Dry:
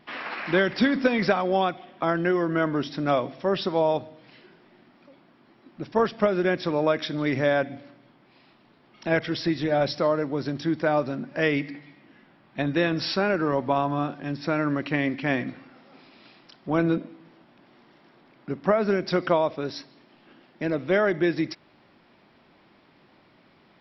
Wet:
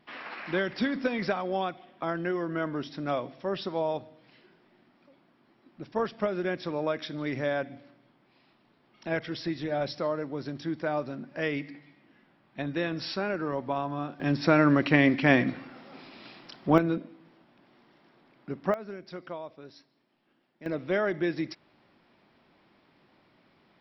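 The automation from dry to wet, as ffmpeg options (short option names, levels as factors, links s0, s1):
-af "asetnsamples=n=441:p=0,asendcmd='14.2 volume volume 4dB;16.78 volume volume -5dB;18.74 volume volume -17dB;20.66 volume volume -5.5dB',volume=0.447"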